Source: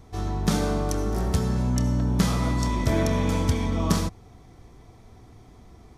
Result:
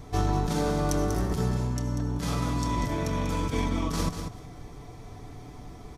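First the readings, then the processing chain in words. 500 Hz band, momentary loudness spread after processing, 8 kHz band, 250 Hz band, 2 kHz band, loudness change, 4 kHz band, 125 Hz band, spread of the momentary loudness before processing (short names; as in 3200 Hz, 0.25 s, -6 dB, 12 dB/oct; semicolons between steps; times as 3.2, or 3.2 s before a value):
-2.5 dB, 18 LU, -3.5 dB, -4.0 dB, -3.0 dB, -3.5 dB, -3.5 dB, -3.5 dB, 4 LU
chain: negative-ratio compressor -28 dBFS, ratio -1; comb 6.9 ms, depth 37%; on a send: feedback echo 0.192 s, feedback 16%, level -8 dB; on the sum: gain +1 dB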